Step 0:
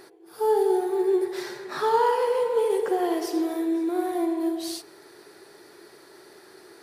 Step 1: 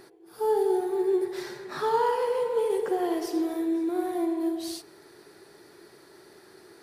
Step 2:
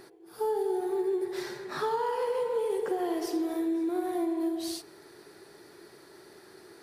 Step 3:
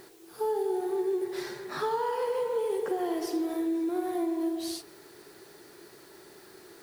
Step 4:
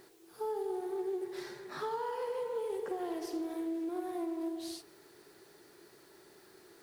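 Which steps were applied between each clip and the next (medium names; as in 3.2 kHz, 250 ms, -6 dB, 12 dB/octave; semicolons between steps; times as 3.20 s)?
tone controls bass +7 dB, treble 0 dB; trim -3.5 dB
compression, threshold -26 dBFS, peak gain reduction 7 dB
word length cut 10-bit, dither triangular
loudspeaker Doppler distortion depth 0.11 ms; trim -7 dB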